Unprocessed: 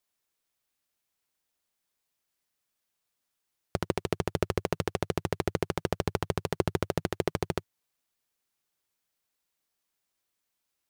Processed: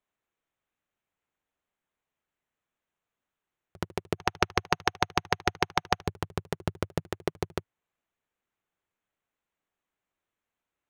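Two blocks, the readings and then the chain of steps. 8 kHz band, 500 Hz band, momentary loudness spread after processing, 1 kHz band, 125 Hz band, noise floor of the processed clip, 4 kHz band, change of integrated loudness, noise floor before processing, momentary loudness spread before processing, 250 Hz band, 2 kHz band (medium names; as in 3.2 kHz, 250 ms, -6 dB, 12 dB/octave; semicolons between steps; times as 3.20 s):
+2.5 dB, -3.0 dB, 10 LU, +6.0 dB, -2.5 dB, under -85 dBFS, +5.5 dB, +1.0 dB, -83 dBFS, 3 LU, -3.0 dB, +6.5 dB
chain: local Wiener filter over 9 samples; slow attack 104 ms; time-frequency box 4.18–6.07 s, 730–6500 Hz +12 dB; trim +2 dB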